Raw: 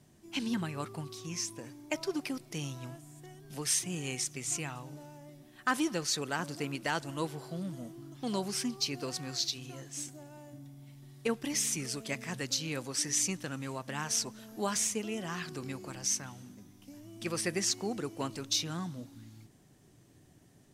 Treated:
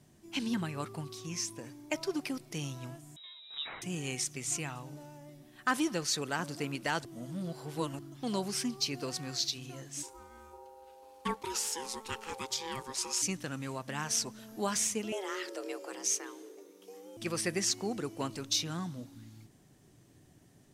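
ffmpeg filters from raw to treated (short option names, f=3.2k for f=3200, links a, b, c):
-filter_complex "[0:a]asettb=1/sr,asplit=3[a][b][c];[a]atrim=end=3.164[d];[b]atrim=start=3.16:end=3.82,asetpts=PTS-STARTPTS,afade=t=in:d=0.004:c=qsin,afade=t=out:st=0.656:d=0.004:c=qsin,lowpass=f=3.4k:t=q:w=0.5098,lowpass=f=3.4k:t=q:w=0.6013,lowpass=f=3.4k:t=q:w=0.9,lowpass=f=3.4k:t=q:w=2.563,afreqshift=-4000[e];[c]atrim=start=3.816[f];[d][e]acrossfade=d=0.004:c1=hsin:c2=qsin[g];[g][f]acrossfade=d=0.004:c1=qsin:c2=hsin,asplit=3[h][i][j];[h]afade=t=out:st=10.02:d=0.02[k];[i]aeval=exprs='val(0)*sin(2*PI*660*n/s)':c=same,afade=t=in:st=10.02:d=0.02,afade=t=out:st=13.21:d=0.02[l];[j]afade=t=in:st=13.21:d=0.02[m];[k][l][m]amix=inputs=3:normalize=0,asettb=1/sr,asplit=3[n][o][p];[n]atrim=end=15.124[q];[o]atrim=start=15.12:end=17.17,asetpts=PTS-STARTPTS,afade=t=in:d=0.004:c=qsin,afade=t=out:st=2.046:d=0.004:c=qsin,afreqshift=190[r];[p]atrim=start=17.166[s];[q][r]acrossfade=d=0.004:c1=hsin:c2=qsin[t];[t][s]acrossfade=d=0.004:c1=qsin:c2=hsin,asplit=3[u][v][w];[u]atrim=end=7.052[x];[v]atrim=start=7.048:end=7.992,asetpts=PTS-STARTPTS,areverse[y];[w]atrim=start=7.988[z];[x][y]acrossfade=d=0.004:c1=hsin:c2=hsin[aa];[aa][z]acrossfade=d=0.004:c1=hsin:c2=hsin"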